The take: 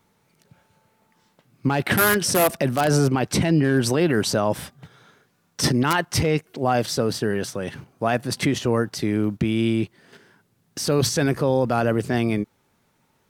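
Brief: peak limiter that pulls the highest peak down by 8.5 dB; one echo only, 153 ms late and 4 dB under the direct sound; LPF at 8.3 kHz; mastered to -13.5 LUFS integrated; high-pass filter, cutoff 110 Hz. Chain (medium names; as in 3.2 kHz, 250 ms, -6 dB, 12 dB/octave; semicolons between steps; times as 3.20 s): high-pass 110 Hz; low-pass 8.3 kHz; peak limiter -15.5 dBFS; delay 153 ms -4 dB; trim +11 dB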